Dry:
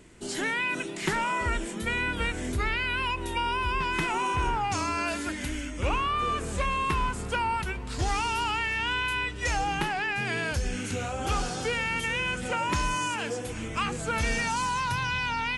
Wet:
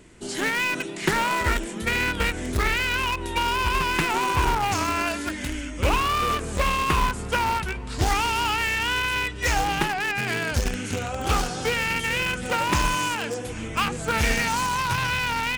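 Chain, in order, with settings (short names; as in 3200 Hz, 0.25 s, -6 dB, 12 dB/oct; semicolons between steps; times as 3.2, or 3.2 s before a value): in parallel at -7.5 dB: bit-crush 4-bit; on the sum: Doppler distortion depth 0.27 ms; gain +2.5 dB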